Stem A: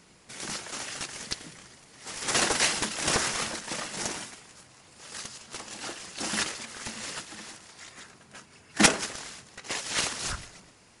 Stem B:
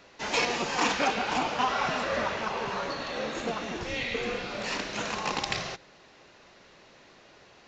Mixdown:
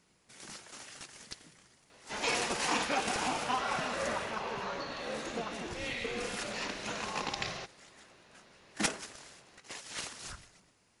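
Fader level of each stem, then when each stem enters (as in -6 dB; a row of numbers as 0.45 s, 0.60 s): -12.0 dB, -5.5 dB; 0.00 s, 1.90 s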